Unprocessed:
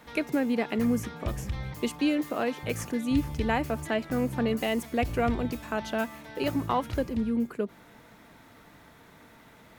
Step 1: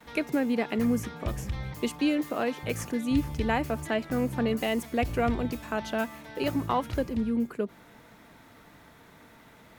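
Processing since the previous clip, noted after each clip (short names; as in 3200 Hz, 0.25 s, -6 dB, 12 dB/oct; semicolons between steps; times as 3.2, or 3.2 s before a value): gate with hold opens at -46 dBFS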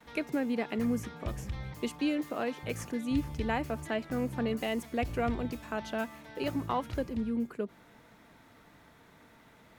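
high shelf 12000 Hz -5 dB; gain -4.5 dB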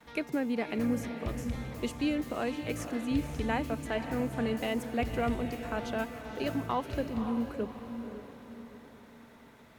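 diffused feedback echo 0.538 s, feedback 45%, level -8.5 dB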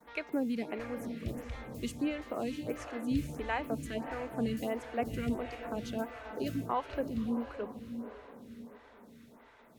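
photocell phaser 1.5 Hz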